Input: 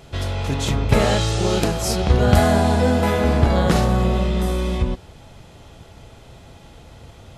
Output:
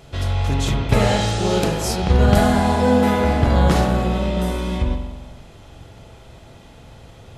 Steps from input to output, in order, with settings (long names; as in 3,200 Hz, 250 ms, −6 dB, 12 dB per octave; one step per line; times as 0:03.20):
spring reverb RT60 1.2 s, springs 44 ms, chirp 45 ms, DRR 3.5 dB
level −1 dB